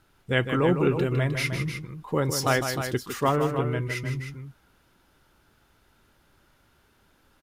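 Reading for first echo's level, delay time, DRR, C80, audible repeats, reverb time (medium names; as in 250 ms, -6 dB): -8.0 dB, 156 ms, no reverb, no reverb, 2, no reverb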